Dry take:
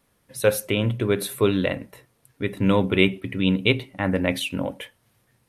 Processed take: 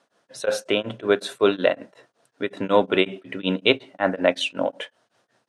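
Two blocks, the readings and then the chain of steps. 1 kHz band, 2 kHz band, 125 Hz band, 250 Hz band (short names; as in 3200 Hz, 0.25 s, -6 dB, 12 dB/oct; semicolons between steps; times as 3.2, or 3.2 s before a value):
+4.5 dB, 0.0 dB, -11.5 dB, -4.0 dB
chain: speaker cabinet 310–7400 Hz, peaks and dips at 660 Hz +8 dB, 1500 Hz +5 dB, 2200 Hz -6 dB; beating tremolo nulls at 5.4 Hz; gain +4.5 dB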